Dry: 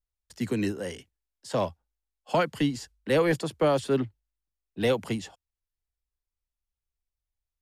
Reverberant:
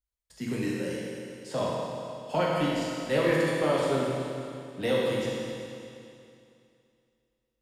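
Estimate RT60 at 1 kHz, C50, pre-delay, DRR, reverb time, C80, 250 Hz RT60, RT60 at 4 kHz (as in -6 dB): 2.6 s, -2.5 dB, 8 ms, -6.0 dB, 2.6 s, -1.0 dB, 2.6 s, 2.6 s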